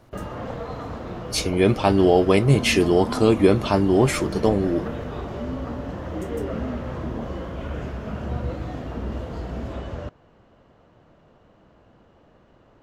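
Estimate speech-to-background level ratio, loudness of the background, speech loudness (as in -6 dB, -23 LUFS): 12.0 dB, -31.5 LUFS, -19.5 LUFS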